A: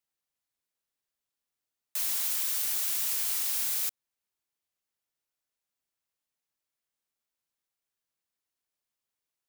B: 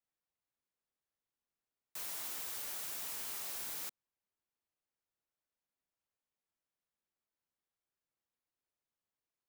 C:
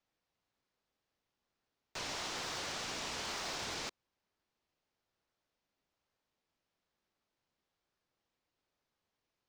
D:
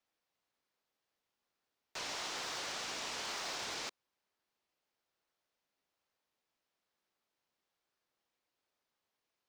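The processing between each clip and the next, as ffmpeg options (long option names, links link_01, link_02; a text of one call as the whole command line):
ffmpeg -i in.wav -filter_complex "[0:a]highshelf=frequency=2500:gain=-12,acrossover=split=250|1400|4200[link_01][link_02][link_03][link_04];[link_03]aeval=exprs='(mod(211*val(0)+1,2)-1)/211':channel_layout=same[link_05];[link_01][link_02][link_05][link_04]amix=inputs=4:normalize=0,volume=-1dB" out.wav
ffmpeg -i in.wav -filter_complex "[0:a]lowpass=frequency=5900:width=0.5412,lowpass=frequency=5900:width=1.3066,asplit=2[link_01][link_02];[link_02]acrusher=samples=17:mix=1:aa=0.000001:lfo=1:lforange=10.2:lforate=1.1,volume=-9dB[link_03];[link_01][link_03]amix=inputs=2:normalize=0,volume=8.5dB" out.wav
ffmpeg -i in.wav -af "lowshelf=frequency=210:gain=-11" out.wav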